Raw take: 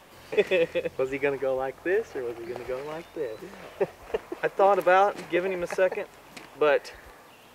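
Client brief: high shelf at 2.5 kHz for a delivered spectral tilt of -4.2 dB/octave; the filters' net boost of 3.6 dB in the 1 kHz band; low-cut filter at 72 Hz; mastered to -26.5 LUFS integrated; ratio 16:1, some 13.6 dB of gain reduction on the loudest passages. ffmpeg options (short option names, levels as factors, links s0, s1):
-af "highpass=72,equalizer=f=1000:t=o:g=6.5,highshelf=f=2500:g=-8.5,acompressor=threshold=0.0501:ratio=16,volume=2.24"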